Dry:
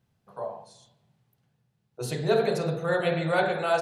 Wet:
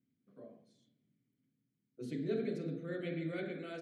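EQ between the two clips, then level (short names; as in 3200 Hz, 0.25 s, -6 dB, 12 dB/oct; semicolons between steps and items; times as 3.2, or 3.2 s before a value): vowel filter i; bell 2900 Hz -13 dB 1.4 oct; +6.5 dB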